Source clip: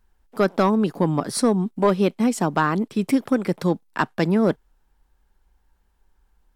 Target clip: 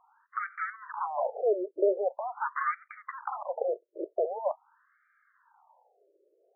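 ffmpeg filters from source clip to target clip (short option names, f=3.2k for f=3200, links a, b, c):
-filter_complex "[0:a]aresample=16000,asoftclip=type=tanh:threshold=-24.5dB,aresample=44100,aresample=8000,aresample=44100,asplit=2[a][b];[b]highpass=f=720:p=1,volume=23dB,asoftclip=type=tanh:threshold=-11.5dB[c];[a][c]amix=inputs=2:normalize=0,lowpass=f=2.5k:p=1,volume=-6dB,acompressor=threshold=-24dB:ratio=3,tiltshelf=f=1.1k:g=6.5,afftfilt=real='re*between(b*sr/1024,450*pow(1700/450,0.5+0.5*sin(2*PI*0.44*pts/sr))/1.41,450*pow(1700/450,0.5+0.5*sin(2*PI*0.44*pts/sr))*1.41)':imag='im*between(b*sr/1024,450*pow(1700/450,0.5+0.5*sin(2*PI*0.44*pts/sr))/1.41,450*pow(1700/450,0.5+0.5*sin(2*PI*0.44*pts/sr))*1.41)':win_size=1024:overlap=0.75"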